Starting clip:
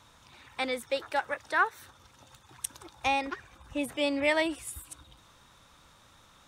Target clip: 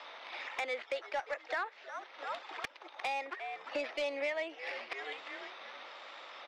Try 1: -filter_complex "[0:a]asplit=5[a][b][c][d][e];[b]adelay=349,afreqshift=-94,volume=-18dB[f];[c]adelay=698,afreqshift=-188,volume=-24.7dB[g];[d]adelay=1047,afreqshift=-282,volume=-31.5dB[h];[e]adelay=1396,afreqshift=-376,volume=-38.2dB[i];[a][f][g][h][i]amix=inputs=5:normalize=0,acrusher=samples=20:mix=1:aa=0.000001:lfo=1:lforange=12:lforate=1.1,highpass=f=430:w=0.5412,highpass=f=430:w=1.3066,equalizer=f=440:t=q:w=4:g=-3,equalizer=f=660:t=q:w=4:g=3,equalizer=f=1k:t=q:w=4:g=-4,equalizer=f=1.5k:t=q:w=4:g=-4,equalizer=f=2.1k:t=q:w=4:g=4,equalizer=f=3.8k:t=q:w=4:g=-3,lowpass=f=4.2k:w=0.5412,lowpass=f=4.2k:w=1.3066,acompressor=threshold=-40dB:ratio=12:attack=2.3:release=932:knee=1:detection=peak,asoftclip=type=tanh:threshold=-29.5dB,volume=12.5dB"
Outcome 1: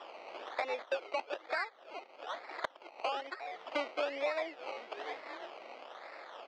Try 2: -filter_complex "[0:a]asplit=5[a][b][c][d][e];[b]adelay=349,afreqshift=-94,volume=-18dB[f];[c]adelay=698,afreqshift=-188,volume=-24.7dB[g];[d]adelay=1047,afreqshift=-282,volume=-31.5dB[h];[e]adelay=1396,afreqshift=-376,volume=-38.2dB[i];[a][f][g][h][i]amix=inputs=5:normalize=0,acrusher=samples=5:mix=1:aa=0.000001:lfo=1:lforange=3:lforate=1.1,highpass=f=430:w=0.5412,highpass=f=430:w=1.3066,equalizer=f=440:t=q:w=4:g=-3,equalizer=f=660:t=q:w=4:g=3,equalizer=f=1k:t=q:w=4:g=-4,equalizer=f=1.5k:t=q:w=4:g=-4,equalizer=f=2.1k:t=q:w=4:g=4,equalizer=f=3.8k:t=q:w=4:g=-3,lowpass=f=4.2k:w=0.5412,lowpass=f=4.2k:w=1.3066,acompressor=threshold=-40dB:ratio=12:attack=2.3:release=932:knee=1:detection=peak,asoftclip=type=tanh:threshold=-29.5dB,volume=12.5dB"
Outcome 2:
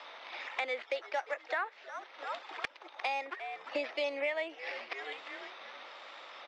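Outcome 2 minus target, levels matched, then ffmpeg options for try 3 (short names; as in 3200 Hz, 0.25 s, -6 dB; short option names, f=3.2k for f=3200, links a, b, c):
soft clip: distortion -14 dB
-filter_complex "[0:a]asplit=5[a][b][c][d][e];[b]adelay=349,afreqshift=-94,volume=-18dB[f];[c]adelay=698,afreqshift=-188,volume=-24.7dB[g];[d]adelay=1047,afreqshift=-282,volume=-31.5dB[h];[e]adelay=1396,afreqshift=-376,volume=-38.2dB[i];[a][f][g][h][i]amix=inputs=5:normalize=0,acrusher=samples=5:mix=1:aa=0.000001:lfo=1:lforange=3:lforate=1.1,highpass=f=430:w=0.5412,highpass=f=430:w=1.3066,equalizer=f=440:t=q:w=4:g=-3,equalizer=f=660:t=q:w=4:g=3,equalizer=f=1k:t=q:w=4:g=-4,equalizer=f=1.5k:t=q:w=4:g=-4,equalizer=f=2.1k:t=q:w=4:g=4,equalizer=f=3.8k:t=q:w=4:g=-3,lowpass=f=4.2k:w=0.5412,lowpass=f=4.2k:w=1.3066,acompressor=threshold=-40dB:ratio=12:attack=2.3:release=932:knee=1:detection=peak,asoftclip=type=tanh:threshold=-39.5dB,volume=12.5dB"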